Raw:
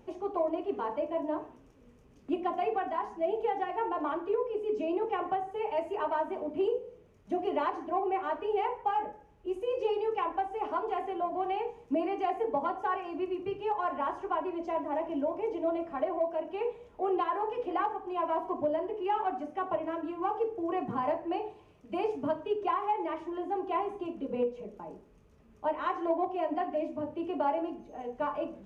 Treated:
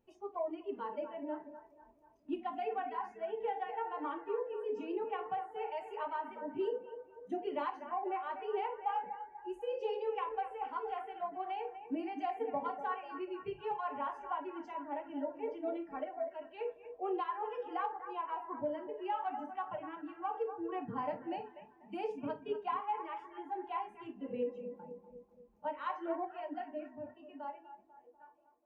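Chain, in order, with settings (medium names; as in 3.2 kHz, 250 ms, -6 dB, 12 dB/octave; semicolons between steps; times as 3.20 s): fade out at the end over 2.66 s; bucket-brigade echo 245 ms, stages 4096, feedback 61%, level -9.5 dB; spectral noise reduction 15 dB; trim -6 dB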